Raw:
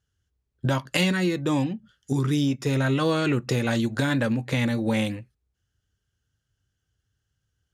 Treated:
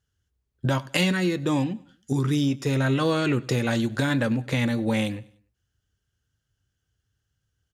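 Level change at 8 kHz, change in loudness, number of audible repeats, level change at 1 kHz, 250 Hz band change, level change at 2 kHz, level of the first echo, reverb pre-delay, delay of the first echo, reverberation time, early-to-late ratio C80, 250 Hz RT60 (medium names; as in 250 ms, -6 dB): 0.0 dB, 0.0 dB, 2, 0.0 dB, 0.0 dB, 0.0 dB, -23.0 dB, no reverb, 98 ms, no reverb, no reverb, no reverb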